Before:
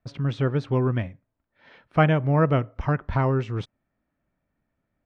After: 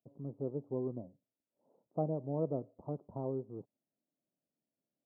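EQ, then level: Gaussian blur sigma 17 samples; HPF 140 Hz; differentiator; +18.0 dB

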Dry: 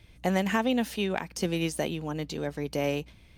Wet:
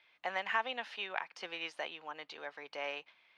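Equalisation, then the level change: Chebyshev band-pass 950–8500 Hz, order 2; air absorption 330 m; tilt shelf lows -3 dB, about 1200 Hz; 0.0 dB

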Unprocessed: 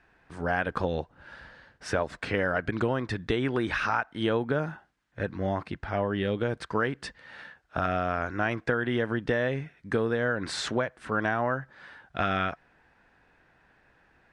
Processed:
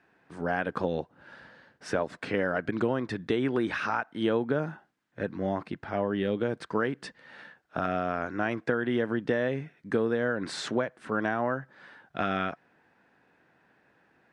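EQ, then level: HPF 190 Hz 12 dB/oct; low shelf 440 Hz +8 dB; -3.5 dB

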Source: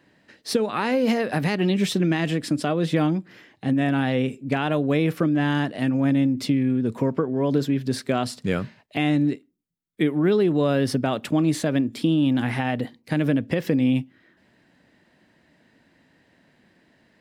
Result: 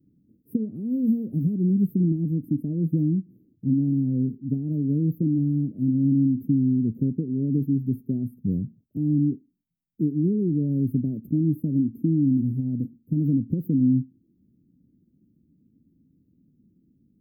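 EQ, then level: inverse Chebyshev band-stop 870–7200 Hz, stop band 60 dB; +2.0 dB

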